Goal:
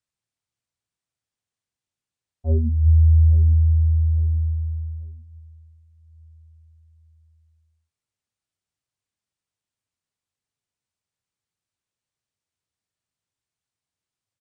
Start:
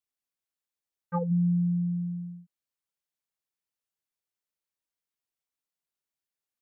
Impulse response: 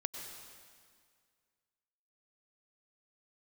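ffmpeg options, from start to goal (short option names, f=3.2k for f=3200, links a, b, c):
-filter_complex "[0:a]equalizer=f=220:w=1:g=14,asetrate=20242,aresample=44100,asplit=2[a][b];[b]adelay=844,lowpass=f=860:p=1,volume=-16dB,asplit=2[c][d];[d]adelay=844,lowpass=f=860:p=1,volume=0.37,asplit=2[e][f];[f]adelay=844,lowpass=f=860:p=1,volume=0.37[g];[c][e][g]amix=inputs=3:normalize=0[h];[a][h]amix=inputs=2:normalize=0"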